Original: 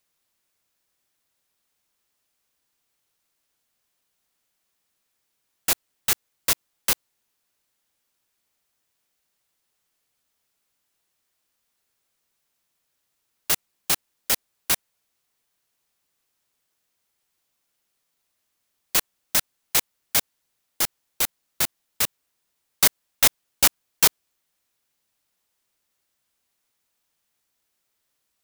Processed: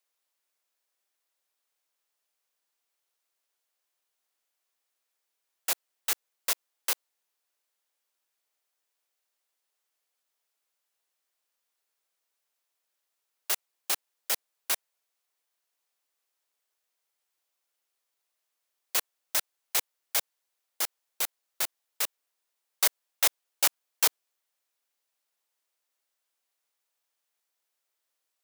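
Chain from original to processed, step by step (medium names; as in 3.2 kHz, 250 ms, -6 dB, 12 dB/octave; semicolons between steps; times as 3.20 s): Chebyshev high-pass 510 Hz, order 2; trim -5.5 dB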